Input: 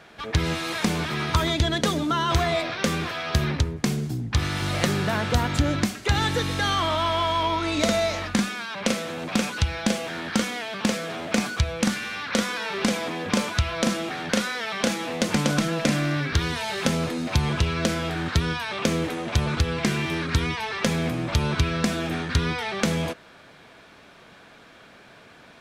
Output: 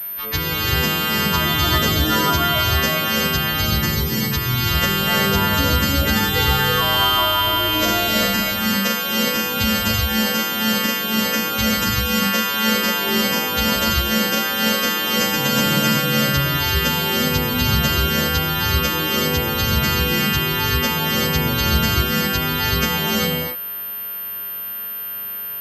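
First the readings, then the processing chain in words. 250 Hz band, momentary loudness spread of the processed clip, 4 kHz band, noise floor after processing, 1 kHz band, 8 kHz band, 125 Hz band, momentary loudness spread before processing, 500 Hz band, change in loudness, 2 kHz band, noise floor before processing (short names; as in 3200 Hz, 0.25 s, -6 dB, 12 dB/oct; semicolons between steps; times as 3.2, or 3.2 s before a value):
+4.0 dB, 4 LU, +11.0 dB, -29 dBFS, +6.5 dB, +7.0 dB, +3.5 dB, 4 LU, +3.5 dB, +7.0 dB, +8.0 dB, -50 dBFS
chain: frequency quantiser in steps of 2 st; non-linear reverb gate 0.43 s rising, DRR -4 dB; pulse-width modulation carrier 13000 Hz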